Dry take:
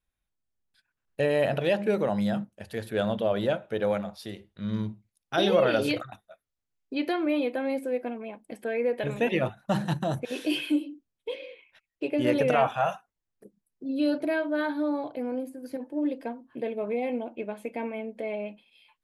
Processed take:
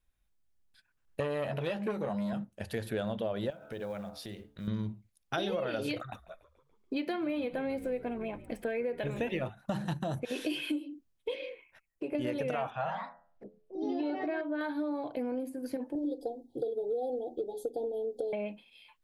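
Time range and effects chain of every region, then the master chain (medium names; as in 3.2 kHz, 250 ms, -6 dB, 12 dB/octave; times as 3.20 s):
1.20–2.33 s: doubling 14 ms -6 dB + transformer saturation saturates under 690 Hz
3.50–4.68 s: de-hum 72.52 Hz, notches 22 + compression 2.5:1, threshold -44 dBFS + short-mantissa float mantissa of 4-bit
5.99–9.47 s: median filter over 3 samples + frequency-shifting echo 143 ms, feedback 57%, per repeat -68 Hz, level -20 dB
11.49–12.15 s: peaking EQ 3.6 kHz -11.5 dB 0.94 oct + compression 2.5:1, threshold -36 dBFS
12.70–14.61 s: de-hum 86.02 Hz, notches 16 + ever faster or slower copies 106 ms, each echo +3 st, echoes 2, each echo -6 dB + distance through air 200 m
15.95–18.33 s: Chebyshev band-stop 780–3500 Hz, order 5 + hum notches 60/120/180/240/300/360/420 Hz + comb 2.4 ms, depth 87%
whole clip: bass shelf 66 Hz +8.5 dB; compression 6:1, threshold -33 dBFS; trim +2 dB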